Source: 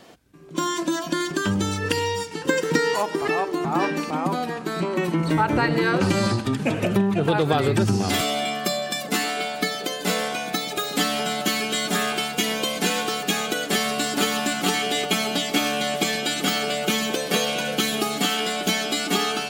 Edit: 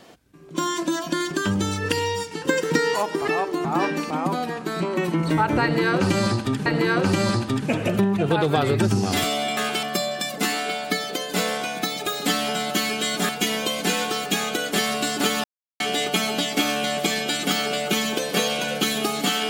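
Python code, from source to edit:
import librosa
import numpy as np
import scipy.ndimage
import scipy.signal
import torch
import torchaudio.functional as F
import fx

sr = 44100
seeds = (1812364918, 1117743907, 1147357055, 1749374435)

y = fx.edit(x, sr, fx.repeat(start_s=5.63, length_s=1.03, count=2),
    fx.move(start_s=12.0, length_s=0.26, to_s=8.54),
    fx.silence(start_s=14.41, length_s=0.36), tone=tone)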